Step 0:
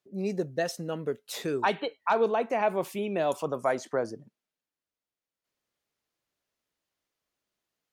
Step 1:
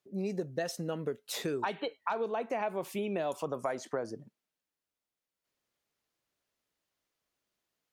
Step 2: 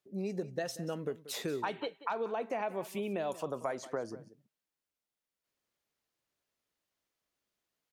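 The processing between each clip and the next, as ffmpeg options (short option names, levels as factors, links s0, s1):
-af "acompressor=threshold=0.0316:ratio=6"
-af "aecho=1:1:185:0.15,volume=0.794"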